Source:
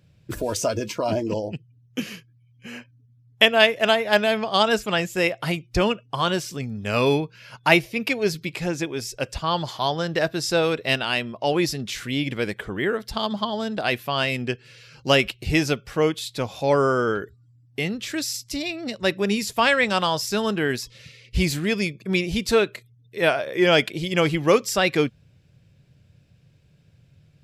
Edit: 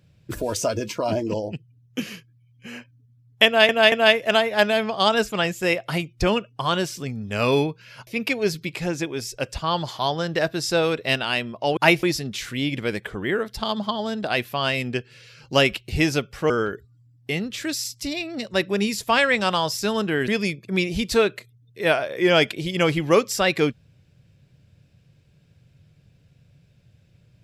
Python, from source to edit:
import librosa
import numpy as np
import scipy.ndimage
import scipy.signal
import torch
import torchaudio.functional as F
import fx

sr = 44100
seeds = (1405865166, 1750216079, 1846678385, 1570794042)

y = fx.edit(x, sr, fx.stutter(start_s=3.46, slice_s=0.23, count=3),
    fx.move(start_s=7.61, length_s=0.26, to_s=11.57),
    fx.cut(start_s=16.04, length_s=0.95),
    fx.cut(start_s=20.77, length_s=0.88), tone=tone)